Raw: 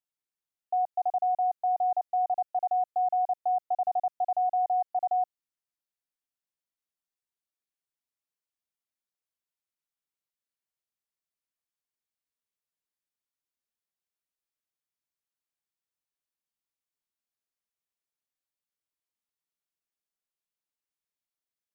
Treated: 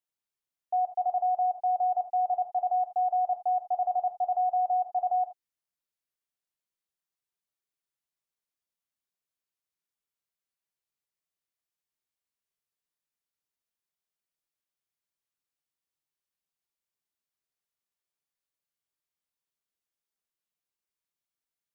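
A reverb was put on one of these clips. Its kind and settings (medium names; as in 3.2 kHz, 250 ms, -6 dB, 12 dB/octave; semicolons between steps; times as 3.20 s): gated-style reverb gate 100 ms flat, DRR 5 dB; trim -1.5 dB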